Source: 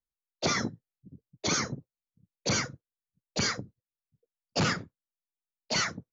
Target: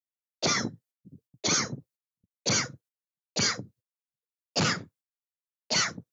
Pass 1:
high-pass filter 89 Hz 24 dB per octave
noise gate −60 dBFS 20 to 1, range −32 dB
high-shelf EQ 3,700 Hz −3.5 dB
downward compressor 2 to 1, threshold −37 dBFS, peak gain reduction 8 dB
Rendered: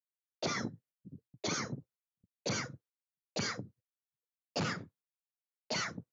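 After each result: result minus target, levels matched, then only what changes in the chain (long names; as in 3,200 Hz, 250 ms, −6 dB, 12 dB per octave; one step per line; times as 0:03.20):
downward compressor: peak gain reduction +8 dB; 8,000 Hz band −3.5 dB
remove: downward compressor 2 to 1, threshold −37 dBFS, peak gain reduction 8 dB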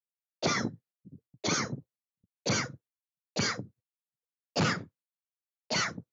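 8,000 Hz band −3.5 dB
change: high-shelf EQ 3,700 Hz +6 dB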